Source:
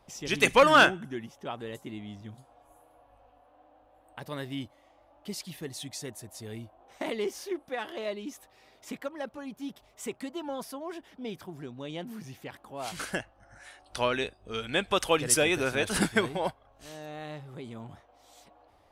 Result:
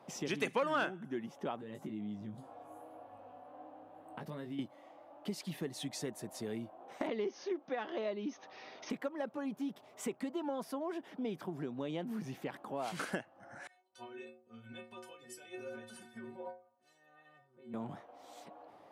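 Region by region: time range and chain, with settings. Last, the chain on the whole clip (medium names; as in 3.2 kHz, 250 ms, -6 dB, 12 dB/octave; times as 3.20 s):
1.60–4.59 s: bass shelf 230 Hz +8.5 dB + compression 4:1, threshold -46 dBFS + doubling 19 ms -6 dB
7.07–8.90 s: brick-wall FIR low-pass 6.6 kHz + tape noise reduction on one side only encoder only
13.67–17.74 s: compression, threshold -35 dBFS + inharmonic resonator 110 Hz, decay 0.77 s, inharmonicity 0.03 + three bands expanded up and down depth 70%
whole clip: high-pass 150 Hz 24 dB/octave; treble shelf 2.3 kHz -10.5 dB; compression 3:1, threshold -43 dBFS; trim +6 dB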